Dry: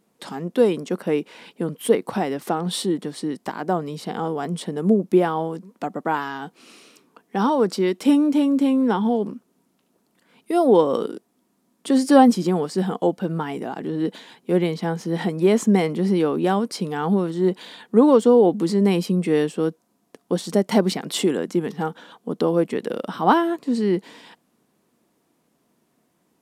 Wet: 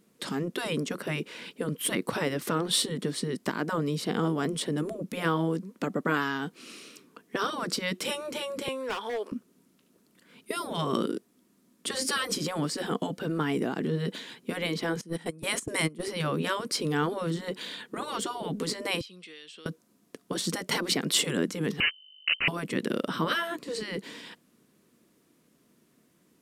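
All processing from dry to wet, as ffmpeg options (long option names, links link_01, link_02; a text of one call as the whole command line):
ffmpeg -i in.wav -filter_complex "[0:a]asettb=1/sr,asplit=3[link_01][link_02][link_03];[link_01]atrim=end=8.684[link_04];[link_02]atrim=start=8.68:end=9.32,asetpts=PTS-STARTPTS,afade=type=in:duration=0.004:curve=qsin,afade=type=out:start_time=0.636:duration=0.004:curve=qsin,highpass=frequency=550:width=0.5412,highpass=frequency=550:width=1.3066,asoftclip=type=hard:threshold=-24.5dB[link_05];[link_03]atrim=start=9.316[link_06];[link_04][link_05]acrossfade=duration=0.004:curve1=hsin:curve2=qsin[link_07];[link_07][link_06]acrossfade=duration=0.004:curve1=qsin:curve2=hsin,asettb=1/sr,asplit=3[link_08][link_09][link_10];[link_08]atrim=end=15.014[link_11];[link_09]atrim=start=15.01:end=16.08,asetpts=PTS-STARTPTS,afade=type=in:duration=0.004:curve=qsin,afade=type=out:start_time=1.066:duration=0.004:curve=qsin,agate=range=-22dB:threshold=-22dB:ratio=16:release=100:detection=peak,equalizer=frequency=9200:width_type=o:width=0.59:gain=11.5[link_12];[link_10]atrim=start=16.076[link_13];[link_11][link_12]acrossfade=duration=0.004:curve1=hsin:curve2=qsin[link_14];[link_14][link_13]acrossfade=duration=0.004:curve1=qsin:curve2=hsin,asettb=1/sr,asplit=3[link_15][link_16][link_17];[link_15]atrim=end=19.014[link_18];[link_16]atrim=start=19.01:end=19.66,asetpts=PTS-STARTPTS,afade=type=in:duration=0.004:curve=qsin,afade=type=out:start_time=0.646:duration=0.004:curve=qsin,bandpass=frequency=3600:width_type=q:width=2.2,acompressor=threshold=-45dB:ratio=4:attack=3.2:release=140:knee=1:detection=peak[link_19];[link_17]atrim=start=19.656[link_20];[link_18][link_19]acrossfade=duration=0.004:curve1=hsin:curve2=qsin[link_21];[link_21][link_20]acrossfade=duration=0.004:curve1=qsin:curve2=hsin,asettb=1/sr,asplit=3[link_22][link_23][link_24];[link_22]atrim=end=21.804[link_25];[link_23]atrim=start=21.8:end=22.48,asetpts=PTS-STARTPTS,afade=type=in:duration=0.004:curve=qsin,afade=type=out:start_time=0.676:duration=0.004:curve=qsin,acrusher=bits=3:mix=0:aa=0.5,aeval=exprs='val(0)+0.00178*(sin(2*PI*50*n/s)+sin(2*PI*2*50*n/s)/2+sin(2*PI*3*50*n/s)/3+sin(2*PI*4*50*n/s)/4+sin(2*PI*5*50*n/s)/5)':channel_layout=same,lowpass=frequency=2600:width_type=q:width=0.5098,lowpass=frequency=2600:width_type=q:width=0.6013,lowpass=frequency=2600:width_type=q:width=0.9,lowpass=frequency=2600:width_type=q:width=2.563,afreqshift=-3100[link_26];[link_24]atrim=start=22.476[link_27];[link_25][link_26]acrossfade=duration=0.004:curve1=hsin:curve2=qsin[link_28];[link_28][link_27]acrossfade=duration=0.004:curve1=qsin:curve2=hsin,afftfilt=real='re*lt(hypot(re,im),0.398)':imag='im*lt(hypot(re,im),0.398)':win_size=1024:overlap=0.75,equalizer=frequency=800:width_type=o:width=0.73:gain=-10.5,volume=2.5dB" out.wav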